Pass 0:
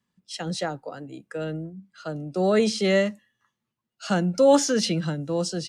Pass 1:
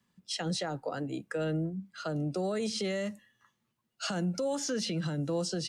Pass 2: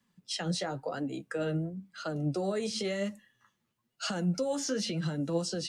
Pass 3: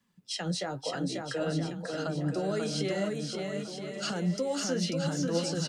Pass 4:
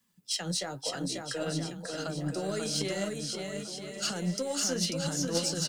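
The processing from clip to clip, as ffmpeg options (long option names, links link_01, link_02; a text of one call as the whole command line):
ffmpeg -i in.wav -filter_complex "[0:a]acrossover=split=98|7200[link_01][link_02][link_03];[link_01]acompressor=threshold=-55dB:ratio=4[link_04];[link_02]acompressor=threshold=-31dB:ratio=4[link_05];[link_03]acompressor=threshold=-49dB:ratio=4[link_06];[link_04][link_05][link_06]amix=inputs=3:normalize=0,alimiter=level_in=4dB:limit=-24dB:level=0:latency=1:release=103,volume=-4dB,volume=3.5dB" out.wav
ffmpeg -i in.wav -af "flanger=delay=3.3:depth=8.9:regen=45:speed=0.96:shape=triangular,volume=4dB" out.wav
ffmpeg -i in.wav -af "aecho=1:1:540|972|1318|1594|1815:0.631|0.398|0.251|0.158|0.1" out.wav
ffmpeg -i in.wav -af "aeval=exprs='0.133*(cos(1*acos(clip(val(0)/0.133,-1,1)))-cos(1*PI/2))+0.015*(cos(3*acos(clip(val(0)/0.133,-1,1)))-cos(3*PI/2))+0.000944*(cos(8*acos(clip(val(0)/0.133,-1,1)))-cos(8*PI/2))':channel_layout=same,crystalizer=i=2.5:c=0" out.wav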